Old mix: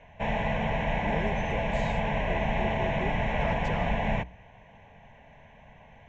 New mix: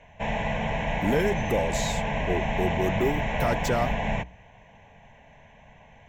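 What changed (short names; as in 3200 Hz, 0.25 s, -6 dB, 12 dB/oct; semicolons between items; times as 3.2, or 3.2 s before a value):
speech +12.0 dB; master: remove air absorption 110 m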